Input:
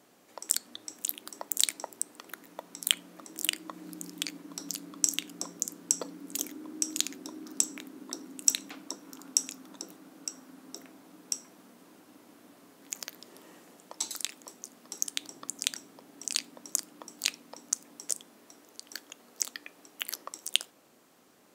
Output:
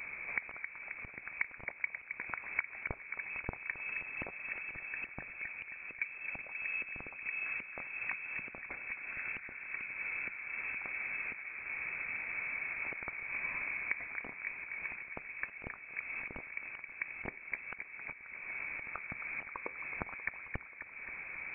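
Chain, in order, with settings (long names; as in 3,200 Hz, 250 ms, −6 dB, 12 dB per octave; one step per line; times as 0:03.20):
Butterworth high-pass 320 Hz 36 dB per octave
parametric band 640 Hz +13 dB 0.51 octaves
downward compressor 4 to 1, threshold −50 dBFS, peak gain reduction 27.5 dB
delay with a band-pass on its return 267 ms, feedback 69%, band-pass 850 Hz, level −6.5 dB
voice inversion scrambler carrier 2,900 Hz
level +15 dB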